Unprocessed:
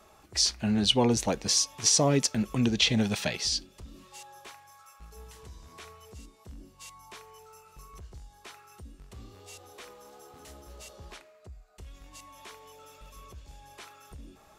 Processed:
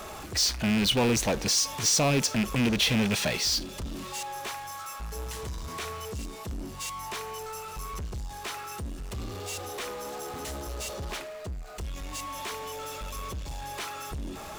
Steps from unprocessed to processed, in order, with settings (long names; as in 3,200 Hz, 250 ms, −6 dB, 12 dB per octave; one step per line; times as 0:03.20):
loose part that buzzes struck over −27 dBFS, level −18 dBFS
power curve on the samples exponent 0.5
level −6 dB